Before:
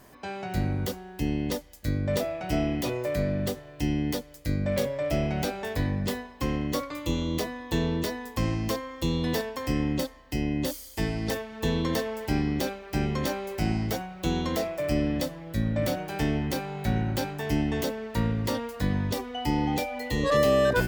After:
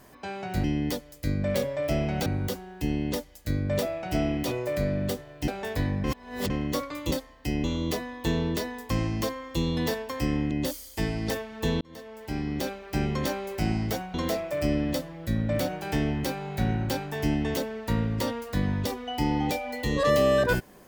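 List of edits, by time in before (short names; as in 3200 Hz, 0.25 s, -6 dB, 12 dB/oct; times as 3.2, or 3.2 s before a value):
3.86–5.48 move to 0.64
6.04–6.5 reverse
9.98–10.51 move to 7.11
11.81–12.82 fade in
14.14–14.41 cut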